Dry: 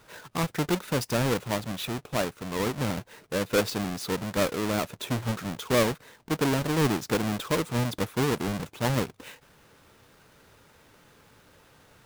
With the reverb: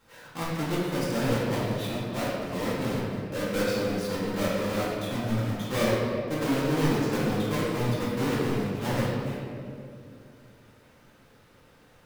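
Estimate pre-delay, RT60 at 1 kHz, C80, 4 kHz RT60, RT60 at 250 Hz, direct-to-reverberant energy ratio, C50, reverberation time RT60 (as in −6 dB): 4 ms, 2.1 s, 0.0 dB, 1.4 s, 3.2 s, −9.0 dB, −2.0 dB, 2.6 s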